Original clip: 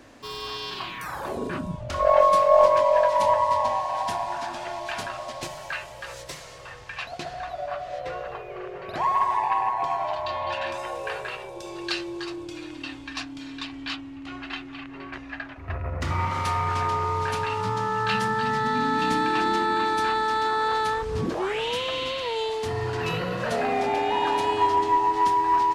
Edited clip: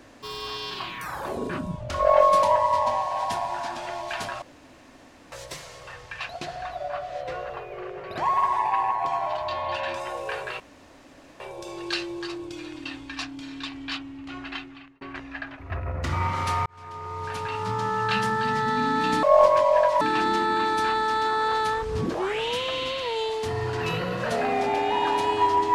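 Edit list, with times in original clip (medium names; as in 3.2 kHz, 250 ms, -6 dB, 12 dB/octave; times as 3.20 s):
2.43–3.21 s: move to 19.21 s
5.20–6.10 s: room tone
11.38 s: insert room tone 0.80 s
14.51–14.99 s: fade out
16.64–17.85 s: fade in linear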